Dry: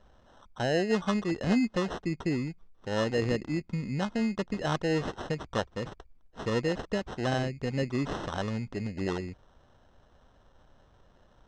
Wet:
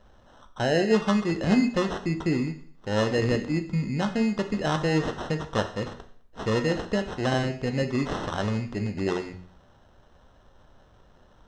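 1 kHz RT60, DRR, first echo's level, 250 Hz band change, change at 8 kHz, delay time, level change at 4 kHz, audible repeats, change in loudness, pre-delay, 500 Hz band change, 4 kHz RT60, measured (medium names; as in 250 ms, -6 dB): 0.60 s, 6.0 dB, no echo, +4.5 dB, +4.5 dB, no echo, +4.5 dB, no echo, +4.5 dB, 12 ms, +4.5 dB, 0.55 s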